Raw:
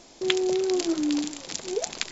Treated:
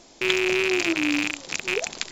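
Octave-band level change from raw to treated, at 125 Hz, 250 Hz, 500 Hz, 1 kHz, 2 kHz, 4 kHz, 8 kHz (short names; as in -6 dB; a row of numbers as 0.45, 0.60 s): +5.0 dB, 0.0 dB, -0.5 dB, +3.0 dB, +13.5 dB, +3.5 dB, n/a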